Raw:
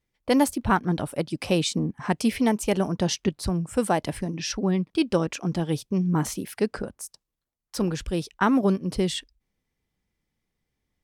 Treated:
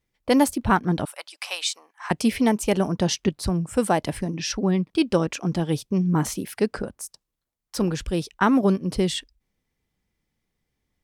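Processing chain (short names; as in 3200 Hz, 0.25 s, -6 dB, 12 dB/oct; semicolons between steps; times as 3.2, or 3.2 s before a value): 1.05–2.11 HPF 880 Hz 24 dB/oct; gain +2 dB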